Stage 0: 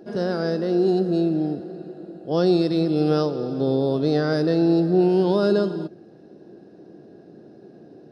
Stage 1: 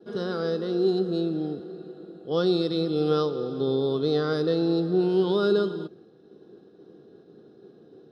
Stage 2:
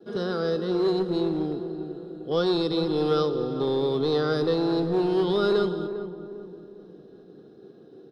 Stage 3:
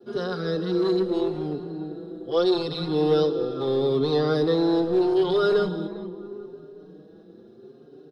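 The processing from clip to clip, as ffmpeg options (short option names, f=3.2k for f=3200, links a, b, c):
-af "superequalizer=7b=1.78:8b=0.631:10b=2.24:13b=2.82,agate=range=-33dB:threshold=-42dB:ratio=3:detection=peak,volume=-6dB"
-filter_complex "[0:a]acrossover=split=440[a][b];[a]asoftclip=type=hard:threshold=-27dB[c];[c][b]amix=inputs=2:normalize=0,asplit=2[d][e];[e]adelay=401,lowpass=f=980:p=1,volume=-9.5dB,asplit=2[f][g];[g]adelay=401,lowpass=f=980:p=1,volume=0.46,asplit=2[h][i];[i]adelay=401,lowpass=f=980:p=1,volume=0.46,asplit=2[j][k];[k]adelay=401,lowpass=f=980:p=1,volume=0.46,asplit=2[l][m];[m]adelay=401,lowpass=f=980:p=1,volume=0.46[n];[d][f][h][j][l][n]amix=inputs=6:normalize=0,volume=1.5dB"
-filter_complex "[0:a]asplit=2[a][b];[b]adelay=5.3,afreqshift=0.78[c];[a][c]amix=inputs=2:normalize=1,volume=3.5dB"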